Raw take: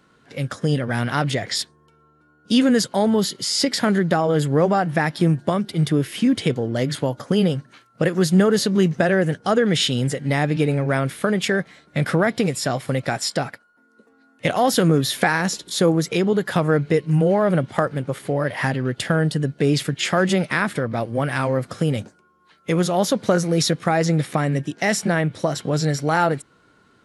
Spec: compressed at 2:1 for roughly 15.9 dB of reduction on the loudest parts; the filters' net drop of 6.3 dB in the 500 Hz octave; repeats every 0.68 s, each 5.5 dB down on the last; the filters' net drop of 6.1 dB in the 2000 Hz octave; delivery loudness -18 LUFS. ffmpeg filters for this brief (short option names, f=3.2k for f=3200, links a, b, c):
-af "equalizer=f=500:t=o:g=-7.5,equalizer=f=2k:t=o:g=-7.5,acompressor=threshold=-44dB:ratio=2,aecho=1:1:680|1360|2040|2720|3400|4080|4760:0.531|0.281|0.149|0.079|0.0419|0.0222|0.0118,volume=17.5dB"